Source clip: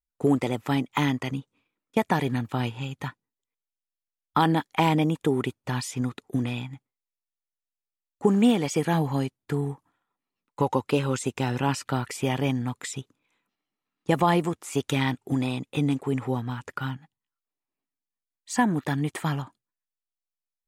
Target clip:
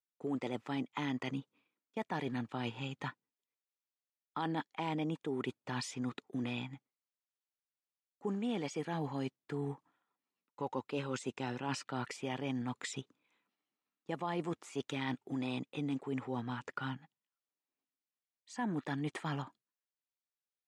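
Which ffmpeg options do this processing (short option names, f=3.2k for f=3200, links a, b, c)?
-af "highpass=170,lowpass=6k,areverse,acompressor=threshold=-30dB:ratio=6,areverse,volume=-4dB"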